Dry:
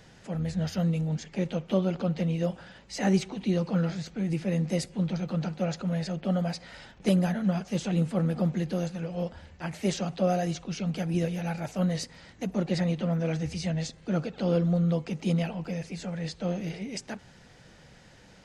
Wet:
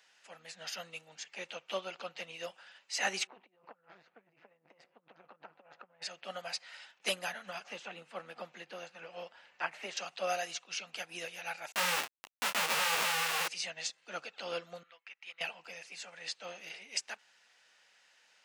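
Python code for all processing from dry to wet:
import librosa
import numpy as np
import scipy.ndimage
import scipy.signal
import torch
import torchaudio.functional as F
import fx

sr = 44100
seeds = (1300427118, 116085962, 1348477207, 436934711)

y = fx.chain(x, sr, fx.lowpass(hz=1200.0, slope=12),
    fx.over_compress(threshold_db=-32.0, ratio=-0.5),
    fx.tube_stage(drive_db=26.0, bias=0.65), at=(3.27, 6.02))
y = fx.chain(y, sr, fx.lowpass(hz=2100.0, slope=6),
    fx.band_squash(depth_pct=70), at=(7.64, 9.97))
y = fx.chain(y, sr, fx.riaa(side='playback'),
    fx.schmitt(flips_db=-31.0),
    fx.detune_double(cents=31), at=(11.72, 13.48))
y = fx.chain(y, sr, fx.bandpass_q(hz=1900.0, q=1.9),
    fx.transient(attack_db=1, sustain_db=-12), at=(14.83, 15.41))
y = scipy.signal.sosfilt(scipy.signal.butter(2, 1100.0, 'highpass', fs=sr, output='sos'), y)
y = fx.peak_eq(y, sr, hz=2700.0, db=5.5, octaves=0.22)
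y = fx.upward_expand(y, sr, threshold_db=-57.0, expansion=1.5)
y = y * 10.0 ** (4.5 / 20.0)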